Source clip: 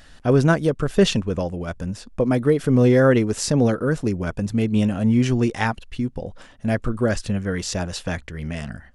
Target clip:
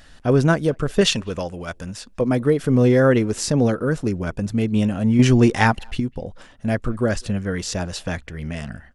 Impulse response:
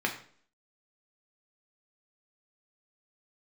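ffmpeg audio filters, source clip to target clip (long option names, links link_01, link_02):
-filter_complex "[0:a]asettb=1/sr,asplit=3[link_01][link_02][link_03];[link_01]atrim=end=1.014[link_04];[link_02]atrim=start=1.01:end=2.21,asetpts=PTS-STARTPTS,afade=type=in:duration=0.004:curve=qsin,afade=type=out:start_time=1.196:duration=0.004:curve=qsin,tiltshelf=frequency=780:gain=-5[link_05];[link_03]atrim=start=2.206[link_06];[link_04][link_05]acrossfade=duration=0.004:curve1=hsin:curve2=qsin[link_07];[link_07][link_06]acrossfade=duration=0.004:curve1=qsin:curve2=hsin,asettb=1/sr,asplit=3[link_08][link_09][link_10];[link_08]atrim=end=5.194[link_11];[link_09]atrim=start=5.19:end=6,asetpts=PTS-STARTPTS,afade=type=in:duration=0.004:curve=qsin,afade=type=out:start_time=0.806:duration=0.004:curve=qsin,acontrast=60[link_12];[link_10]atrim=start=5.996[link_13];[link_11][link_12]acrossfade=duration=0.004:curve1=hsin:curve2=qsin[link_14];[link_14][link_13]acrossfade=duration=0.004:curve1=qsin:curve2=hsin,asplit=2[link_15][link_16];[link_16]adelay=200,highpass=300,lowpass=3400,asoftclip=type=hard:threshold=-13.5dB,volume=-28dB[link_17];[link_15][link_17]amix=inputs=2:normalize=0"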